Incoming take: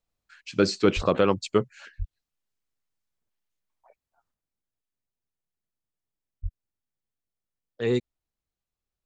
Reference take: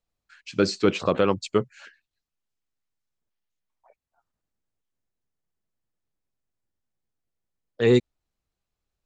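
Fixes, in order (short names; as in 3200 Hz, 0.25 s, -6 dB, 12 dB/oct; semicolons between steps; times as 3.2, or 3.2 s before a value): de-plosive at 0.95/1.98/6.42; gain 0 dB, from 4.34 s +6.5 dB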